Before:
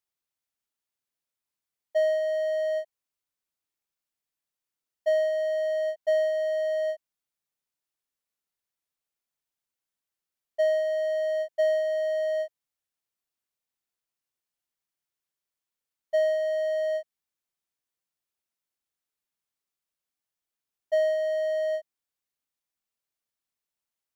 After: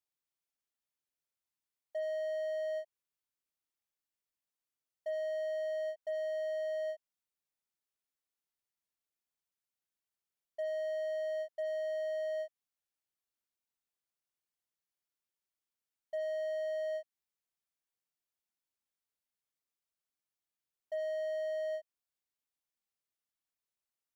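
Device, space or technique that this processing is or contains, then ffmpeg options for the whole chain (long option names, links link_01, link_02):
clipper into limiter: -af "asoftclip=type=hard:threshold=-17.5dB,alimiter=level_in=1.5dB:limit=-24dB:level=0:latency=1:release=206,volume=-1.5dB,volume=-5.5dB"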